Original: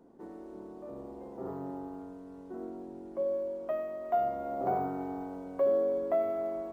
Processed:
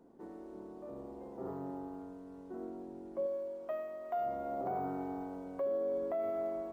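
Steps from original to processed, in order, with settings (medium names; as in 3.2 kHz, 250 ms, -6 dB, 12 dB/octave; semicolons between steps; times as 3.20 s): 3.26–4.26 s: bass shelf 470 Hz -7 dB; peak limiter -26 dBFS, peak gain reduction 6.5 dB; trim -2.5 dB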